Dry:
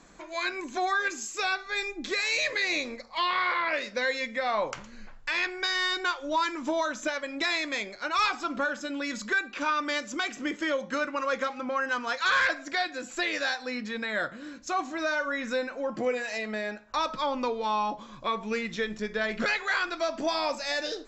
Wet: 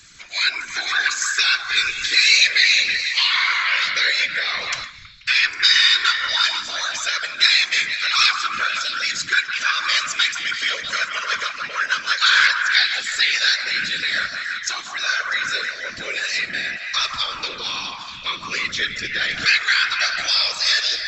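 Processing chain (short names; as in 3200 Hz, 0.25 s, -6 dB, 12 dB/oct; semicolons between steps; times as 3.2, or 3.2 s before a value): EQ curve 180 Hz 0 dB, 300 Hz -24 dB, 430 Hz -10 dB, 870 Hz -17 dB, 1400 Hz +4 dB, 4700 Hz +15 dB, 9900 Hz +5 dB; whisperiser; delay with a stepping band-pass 0.161 s, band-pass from 910 Hz, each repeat 0.7 oct, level -1.5 dB; 4.84–5.43 upward expander 1.5:1, over -38 dBFS; gain +3 dB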